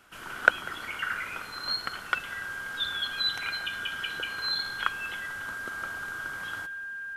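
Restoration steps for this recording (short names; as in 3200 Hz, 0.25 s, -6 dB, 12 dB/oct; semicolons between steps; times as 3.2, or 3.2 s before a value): notch 1600 Hz, Q 30; inverse comb 0.195 s -20 dB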